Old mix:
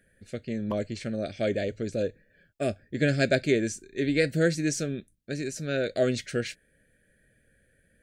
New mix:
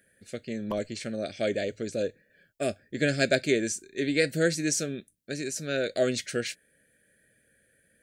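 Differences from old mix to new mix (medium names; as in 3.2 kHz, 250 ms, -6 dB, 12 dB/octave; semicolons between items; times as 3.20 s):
speech: add high-pass 200 Hz 6 dB/octave; master: add treble shelf 5.1 kHz +7.5 dB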